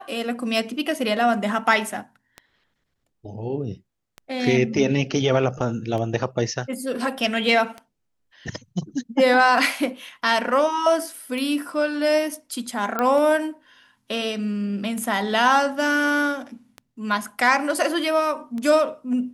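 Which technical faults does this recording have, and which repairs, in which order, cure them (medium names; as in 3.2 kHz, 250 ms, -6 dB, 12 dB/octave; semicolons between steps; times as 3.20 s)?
tick 33 1/3 rpm
12.99 s: pop -10 dBFS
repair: de-click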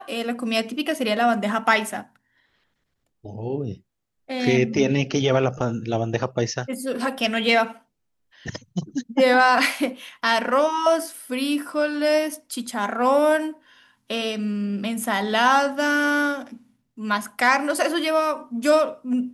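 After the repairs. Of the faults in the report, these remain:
nothing left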